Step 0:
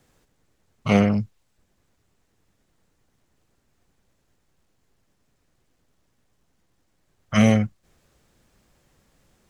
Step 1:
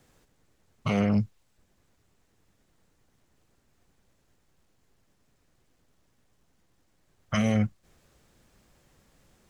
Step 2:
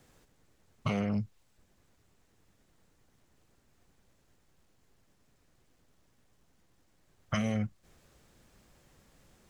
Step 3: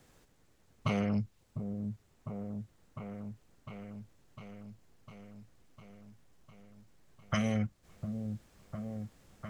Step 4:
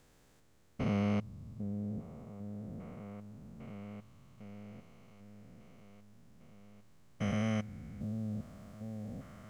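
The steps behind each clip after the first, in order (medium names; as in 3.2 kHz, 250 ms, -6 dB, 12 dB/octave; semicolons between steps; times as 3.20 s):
peak limiter -14 dBFS, peak gain reduction 11 dB
compression 6:1, threshold -27 dBFS, peak gain reduction 8 dB
delay with an opening low-pass 703 ms, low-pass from 400 Hz, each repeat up 1 oct, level -6 dB
spectrogram pixelated in time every 400 ms; trim +1.5 dB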